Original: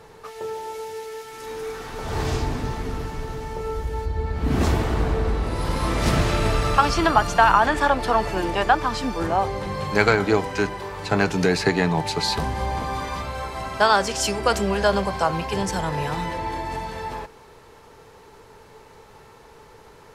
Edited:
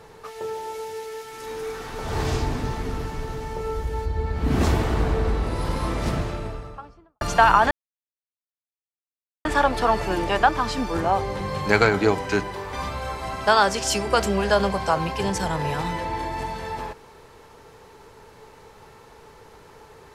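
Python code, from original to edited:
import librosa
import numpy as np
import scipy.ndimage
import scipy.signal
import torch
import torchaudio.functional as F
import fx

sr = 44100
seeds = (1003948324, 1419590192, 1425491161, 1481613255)

y = fx.studio_fade_out(x, sr, start_s=5.27, length_s=1.94)
y = fx.edit(y, sr, fx.insert_silence(at_s=7.71, length_s=1.74),
    fx.cut(start_s=10.99, length_s=2.07), tone=tone)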